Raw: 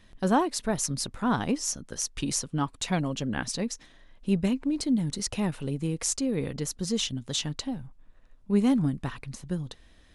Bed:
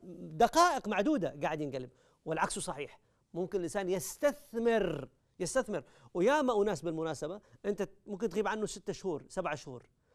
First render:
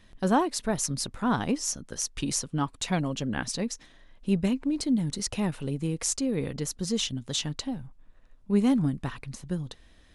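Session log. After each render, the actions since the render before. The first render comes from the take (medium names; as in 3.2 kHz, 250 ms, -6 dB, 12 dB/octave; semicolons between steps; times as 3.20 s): no audible change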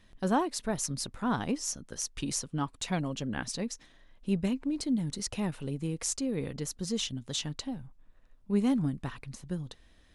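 trim -4 dB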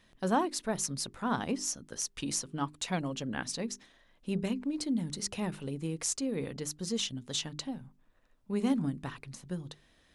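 bass shelf 77 Hz -11.5 dB; hum notches 50/100/150/200/250/300/350/400 Hz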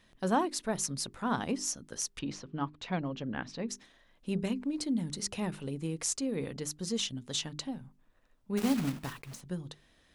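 2.19–3.69 s: distance through air 220 m; 8.57–9.42 s: block-companded coder 3-bit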